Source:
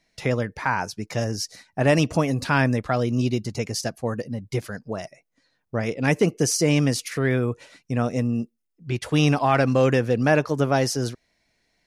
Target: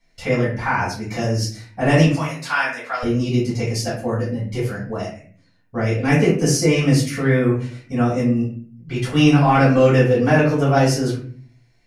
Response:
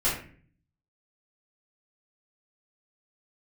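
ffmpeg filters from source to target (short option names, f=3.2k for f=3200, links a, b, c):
-filter_complex "[0:a]asettb=1/sr,asplit=3[a][b][c];[a]atrim=end=2.064[d];[b]atrim=start=2.06:end=3.03,asetpts=PTS-STARTPTS,afade=t=in:d=0.004:c=qsin,afade=t=out:st=0.966:d=0.004:c=qsin,highpass=950[e];[c]atrim=start=3.026[f];[d][e]acrossfade=d=0.004:c1=hsin:c2=qsin[g];[g][f]acrossfade=d=0.004:c1=qsin:c2=hsin[h];[1:a]atrim=start_sample=2205[i];[h][i]afir=irnorm=-1:irlink=0,volume=-7dB"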